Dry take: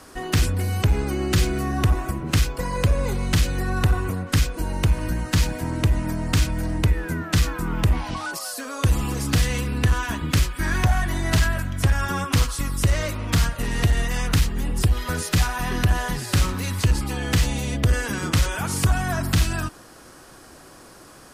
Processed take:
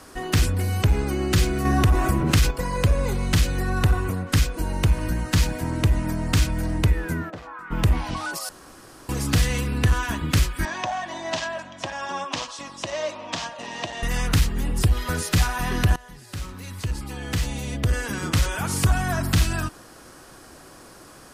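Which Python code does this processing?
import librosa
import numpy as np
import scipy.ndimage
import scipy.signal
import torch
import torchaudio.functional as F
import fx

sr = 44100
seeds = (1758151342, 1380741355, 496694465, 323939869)

y = fx.env_flatten(x, sr, amount_pct=50, at=(1.65, 2.51))
y = fx.bandpass_q(y, sr, hz=fx.line((7.29, 480.0), (7.7, 1800.0)), q=2.5, at=(7.29, 7.7), fade=0.02)
y = fx.cabinet(y, sr, low_hz=410.0, low_slope=12, high_hz=6200.0, hz=(430.0, 620.0, 930.0, 1400.0, 2100.0, 4500.0), db=(-9, 6, 4, -10, -6, -4), at=(10.65, 14.03))
y = fx.edit(y, sr, fx.room_tone_fill(start_s=8.49, length_s=0.6),
    fx.fade_in_from(start_s=15.96, length_s=2.79, floor_db=-21.5), tone=tone)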